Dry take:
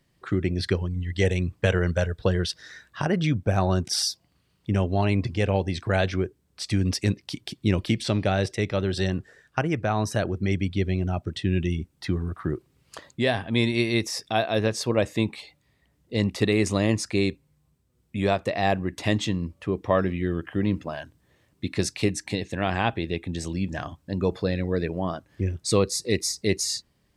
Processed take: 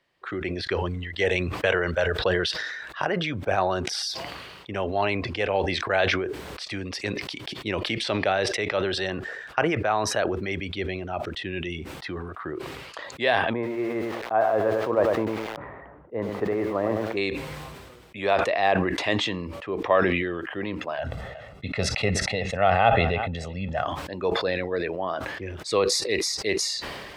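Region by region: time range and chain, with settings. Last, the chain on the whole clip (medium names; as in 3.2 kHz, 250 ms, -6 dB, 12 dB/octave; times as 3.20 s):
13.53–17.17 s: low-pass 1.4 kHz 24 dB/octave + bit-crushed delay 100 ms, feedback 35%, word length 7-bit, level -7.5 dB
20.98–23.85 s: tilt EQ -2.5 dB/octave + comb 1.5 ms, depth 81% + delay 367 ms -21.5 dB
whole clip: three-band isolator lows -18 dB, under 410 Hz, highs -15 dB, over 4.1 kHz; decay stretcher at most 32 dB/s; trim +3 dB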